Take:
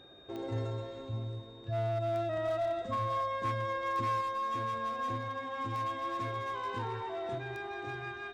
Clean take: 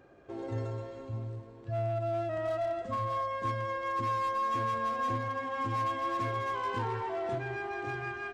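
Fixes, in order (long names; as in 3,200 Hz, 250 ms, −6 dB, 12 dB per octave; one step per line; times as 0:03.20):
clipped peaks rebuilt −27.5 dBFS
click removal
notch filter 3,700 Hz, Q 30
level 0 dB, from 0:04.21 +3.5 dB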